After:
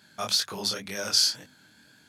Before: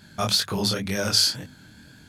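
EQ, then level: high-pass 460 Hz 6 dB/octave; dynamic bell 5.8 kHz, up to +5 dB, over -36 dBFS, Q 2.4; -4.5 dB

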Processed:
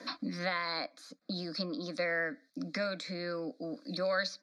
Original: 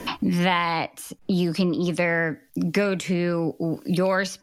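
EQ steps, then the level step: high-pass 260 Hz 12 dB/octave; resonant low-pass 4.2 kHz, resonance Q 6.4; static phaser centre 590 Hz, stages 8; -8.0 dB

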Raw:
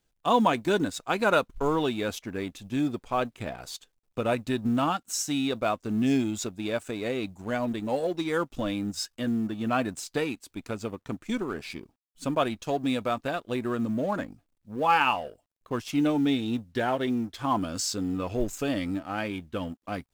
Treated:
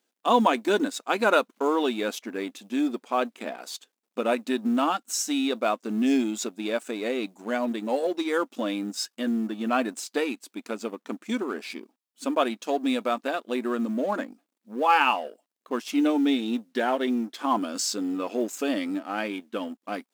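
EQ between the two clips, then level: brick-wall FIR high-pass 200 Hz; +2.0 dB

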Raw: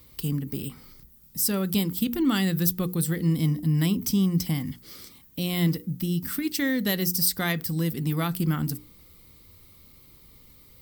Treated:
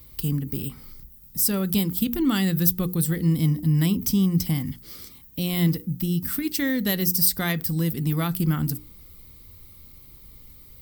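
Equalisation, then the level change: bass shelf 90 Hz +10.5 dB; treble shelf 12 kHz +6.5 dB; 0.0 dB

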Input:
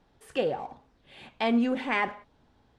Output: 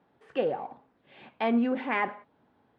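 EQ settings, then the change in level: band-pass 160–2300 Hz; 0.0 dB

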